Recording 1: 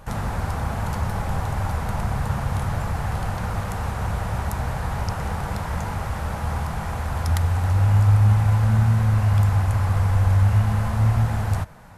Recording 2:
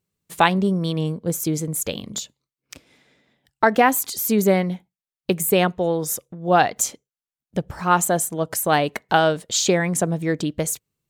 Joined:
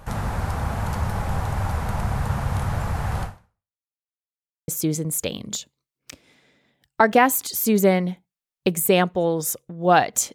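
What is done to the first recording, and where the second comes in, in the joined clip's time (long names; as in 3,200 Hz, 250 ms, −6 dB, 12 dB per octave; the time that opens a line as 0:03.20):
recording 1
0:03.23–0:03.83: fade out exponential
0:03.83–0:04.68: silence
0:04.68: continue with recording 2 from 0:01.31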